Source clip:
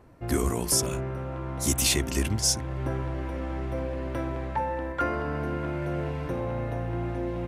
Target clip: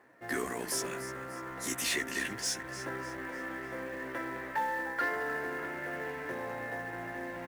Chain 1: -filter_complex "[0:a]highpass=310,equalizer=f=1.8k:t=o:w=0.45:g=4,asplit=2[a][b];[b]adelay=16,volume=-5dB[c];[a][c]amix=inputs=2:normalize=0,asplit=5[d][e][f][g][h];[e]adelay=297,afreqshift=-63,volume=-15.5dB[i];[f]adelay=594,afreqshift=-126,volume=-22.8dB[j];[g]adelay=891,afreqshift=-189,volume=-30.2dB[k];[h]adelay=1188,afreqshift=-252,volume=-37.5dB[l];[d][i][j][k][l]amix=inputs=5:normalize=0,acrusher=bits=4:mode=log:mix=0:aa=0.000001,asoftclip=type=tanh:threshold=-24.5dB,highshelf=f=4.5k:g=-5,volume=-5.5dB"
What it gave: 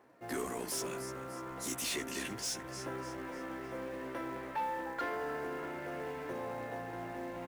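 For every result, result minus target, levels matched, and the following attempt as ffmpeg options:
2000 Hz band -5.0 dB; soft clip: distortion +7 dB
-filter_complex "[0:a]highpass=310,equalizer=f=1.8k:t=o:w=0.45:g=14.5,asplit=2[a][b];[b]adelay=16,volume=-5dB[c];[a][c]amix=inputs=2:normalize=0,asplit=5[d][e][f][g][h];[e]adelay=297,afreqshift=-63,volume=-15.5dB[i];[f]adelay=594,afreqshift=-126,volume=-22.8dB[j];[g]adelay=891,afreqshift=-189,volume=-30.2dB[k];[h]adelay=1188,afreqshift=-252,volume=-37.5dB[l];[d][i][j][k][l]amix=inputs=5:normalize=0,acrusher=bits=4:mode=log:mix=0:aa=0.000001,asoftclip=type=tanh:threshold=-24.5dB,highshelf=f=4.5k:g=-5,volume=-5.5dB"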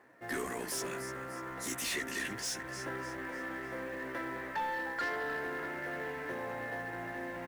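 soft clip: distortion +8 dB
-filter_complex "[0:a]highpass=310,equalizer=f=1.8k:t=o:w=0.45:g=14.5,asplit=2[a][b];[b]adelay=16,volume=-5dB[c];[a][c]amix=inputs=2:normalize=0,asplit=5[d][e][f][g][h];[e]adelay=297,afreqshift=-63,volume=-15.5dB[i];[f]adelay=594,afreqshift=-126,volume=-22.8dB[j];[g]adelay=891,afreqshift=-189,volume=-30.2dB[k];[h]adelay=1188,afreqshift=-252,volume=-37.5dB[l];[d][i][j][k][l]amix=inputs=5:normalize=0,acrusher=bits=4:mode=log:mix=0:aa=0.000001,asoftclip=type=tanh:threshold=-17dB,highshelf=f=4.5k:g=-5,volume=-5.5dB"

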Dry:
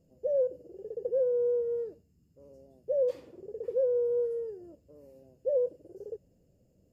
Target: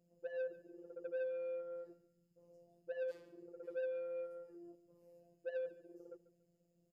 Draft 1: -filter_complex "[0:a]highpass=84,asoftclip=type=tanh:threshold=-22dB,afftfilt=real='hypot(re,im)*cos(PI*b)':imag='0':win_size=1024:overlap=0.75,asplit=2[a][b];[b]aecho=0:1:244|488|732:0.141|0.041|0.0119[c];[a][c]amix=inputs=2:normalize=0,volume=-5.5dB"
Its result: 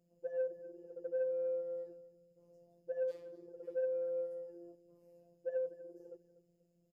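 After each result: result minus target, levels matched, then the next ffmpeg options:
echo 0.102 s late; soft clip: distortion -10 dB
-filter_complex "[0:a]highpass=84,asoftclip=type=tanh:threshold=-22dB,afftfilt=real='hypot(re,im)*cos(PI*b)':imag='0':win_size=1024:overlap=0.75,asplit=2[a][b];[b]aecho=0:1:142|284|426:0.141|0.041|0.0119[c];[a][c]amix=inputs=2:normalize=0,volume=-5.5dB"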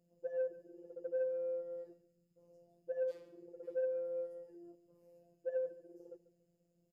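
soft clip: distortion -10 dB
-filter_complex "[0:a]highpass=84,asoftclip=type=tanh:threshold=-29.5dB,afftfilt=real='hypot(re,im)*cos(PI*b)':imag='0':win_size=1024:overlap=0.75,asplit=2[a][b];[b]aecho=0:1:142|284|426:0.141|0.041|0.0119[c];[a][c]amix=inputs=2:normalize=0,volume=-5.5dB"

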